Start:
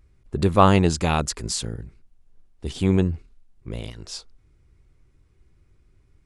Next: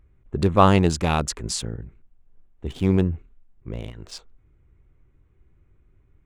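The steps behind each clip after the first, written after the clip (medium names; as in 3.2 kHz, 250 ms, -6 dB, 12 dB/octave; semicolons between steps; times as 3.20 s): local Wiener filter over 9 samples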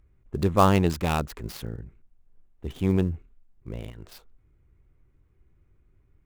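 dead-time distortion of 0.077 ms; trim -3.5 dB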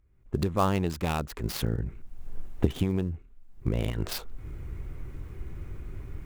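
recorder AGC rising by 33 dB/s; trim -6.5 dB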